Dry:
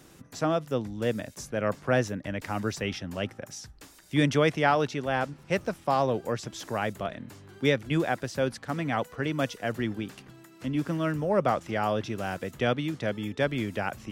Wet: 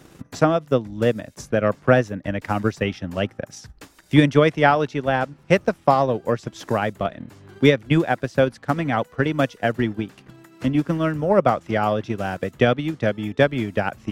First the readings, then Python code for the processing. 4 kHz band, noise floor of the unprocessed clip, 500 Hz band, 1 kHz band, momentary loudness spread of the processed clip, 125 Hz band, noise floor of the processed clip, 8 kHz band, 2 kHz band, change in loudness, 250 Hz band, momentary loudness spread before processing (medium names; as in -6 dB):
+4.5 dB, -54 dBFS, +8.0 dB, +7.0 dB, 10 LU, +8.0 dB, -53 dBFS, no reading, +6.5 dB, +7.5 dB, +8.0 dB, 10 LU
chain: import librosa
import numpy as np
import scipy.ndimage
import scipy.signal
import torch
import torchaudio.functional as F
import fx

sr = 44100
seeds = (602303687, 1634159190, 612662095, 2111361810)

y = fx.high_shelf(x, sr, hz=4000.0, db=-6.0)
y = fx.transient(y, sr, attack_db=7, sustain_db=-6)
y = y * librosa.db_to_amplitude(5.5)